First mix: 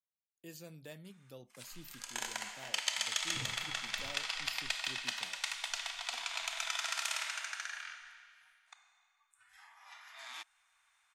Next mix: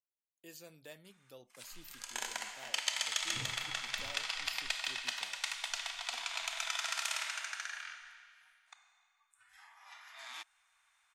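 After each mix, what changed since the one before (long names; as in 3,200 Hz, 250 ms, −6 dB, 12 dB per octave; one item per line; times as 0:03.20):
speech: add parametric band 150 Hz −10 dB 1.9 octaves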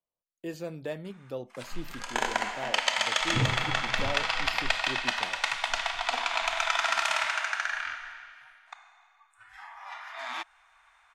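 master: remove first-order pre-emphasis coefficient 0.9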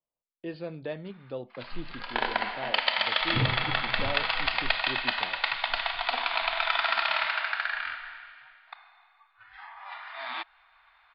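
background: remove high-frequency loss of the air 64 metres
master: add Butterworth low-pass 4,700 Hz 96 dB per octave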